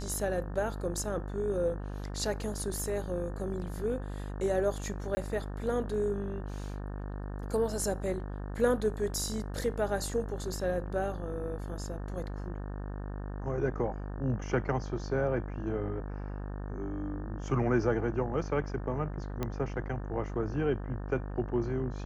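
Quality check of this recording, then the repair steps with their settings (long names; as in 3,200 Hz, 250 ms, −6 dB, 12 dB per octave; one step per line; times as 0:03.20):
mains buzz 50 Hz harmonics 36 −38 dBFS
0:05.15–0:05.17: drop-out 20 ms
0:19.43: click −19 dBFS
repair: click removal
hum removal 50 Hz, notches 36
repair the gap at 0:05.15, 20 ms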